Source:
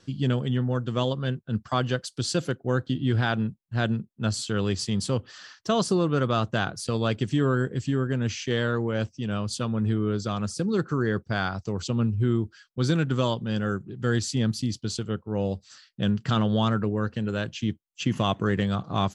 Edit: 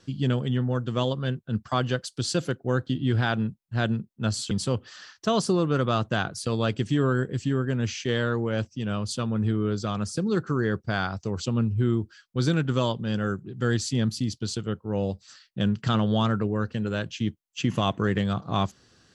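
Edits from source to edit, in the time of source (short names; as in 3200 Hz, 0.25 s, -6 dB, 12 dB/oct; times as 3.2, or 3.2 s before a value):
4.51–4.93 cut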